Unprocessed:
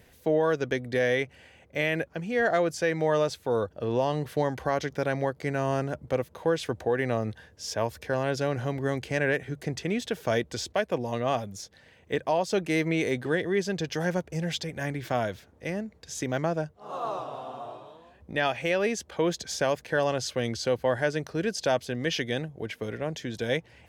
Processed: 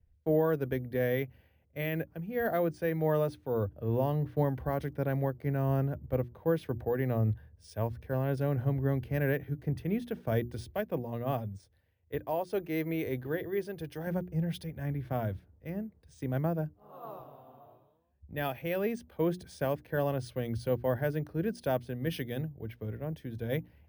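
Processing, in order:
RIAA equalisation playback
mains-hum notches 60/120/180/240/300/360 Hz
bad sample-rate conversion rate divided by 3×, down filtered, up hold
0:11.56–0:14.07: parametric band 190 Hz −10.5 dB 0.55 octaves
multiband upward and downward expander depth 70%
level −8 dB

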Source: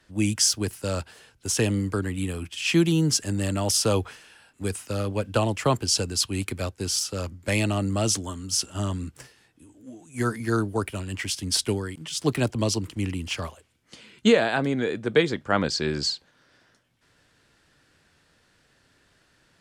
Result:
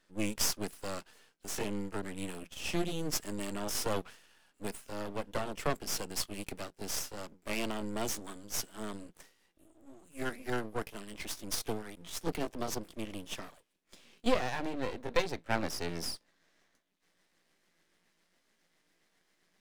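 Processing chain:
pitch glide at a constant tempo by +2.5 semitones starting unshifted
elliptic high-pass filter 170 Hz
half-wave rectification
level −4.5 dB

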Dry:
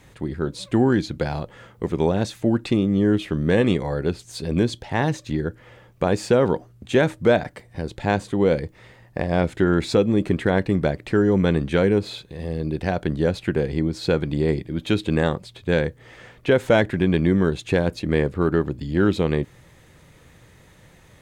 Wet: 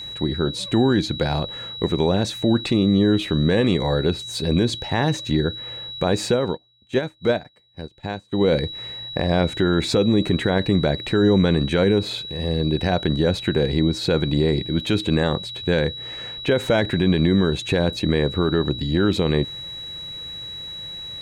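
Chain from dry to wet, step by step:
brickwall limiter −14 dBFS, peak gain reduction 7.5 dB
steady tone 3,900 Hz −36 dBFS
0:06.34–0:08.41: expander for the loud parts 2.5 to 1, over −37 dBFS
level +4.5 dB

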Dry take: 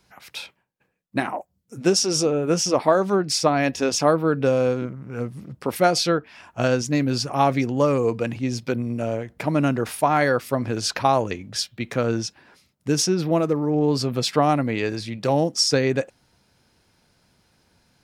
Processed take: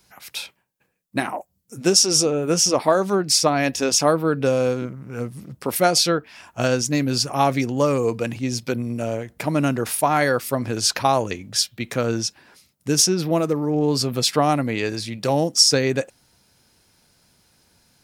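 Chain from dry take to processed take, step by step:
high-shelf EQ 5,500 Hz +11.5 dB

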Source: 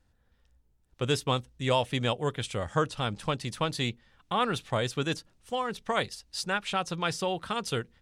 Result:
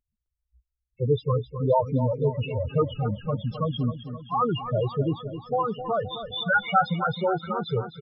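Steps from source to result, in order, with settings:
hearing-aid frequency compression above 1,800 Hz 1.5 to 1
0:06.05–0:06.94: comb filter 1.4 ms, depth 86%
spectral peaks only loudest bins 4
repeating echo 261 ms, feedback 59%, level −11 dB
noise reduction from a noise print of the clip's start 24 dB
level +8 dB

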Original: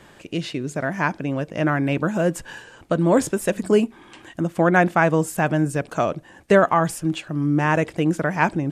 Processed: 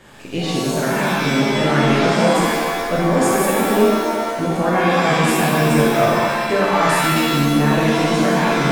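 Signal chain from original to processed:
brickwall limiter −14.5 dBFS, peak gain reduction 11 dB
reverb with rising layers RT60 1.5 s, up +7 semitones, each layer −2 dB, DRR −5 dB

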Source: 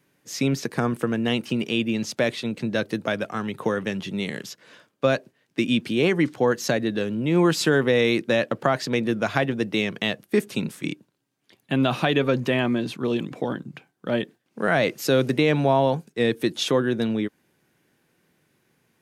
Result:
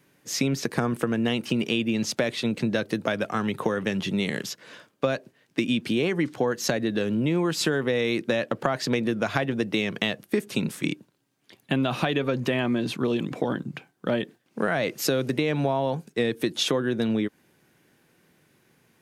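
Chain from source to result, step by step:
downward compressor, threshold −25 dBFS, peak gain reduction 10.5 dB
level +4 dB

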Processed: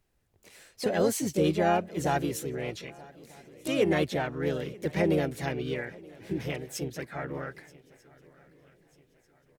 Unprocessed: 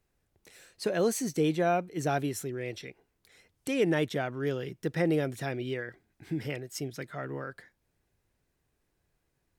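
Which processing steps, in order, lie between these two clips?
feedback echo with a long and a short gap by turns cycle 1,241 ms, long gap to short 3 to 1, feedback 40%, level −23 dB
pitch-shifted copies added −12 semitones −14 dB, +3 semitones −4 dB

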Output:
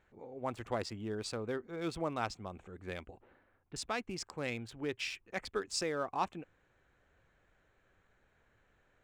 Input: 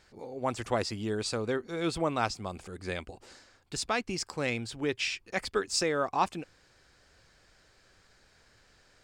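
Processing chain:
adaptive Wiener filter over 9 samples
0:03.19–0:03.76: high-frequency loss of the air 400 metres
level −6.5 dB

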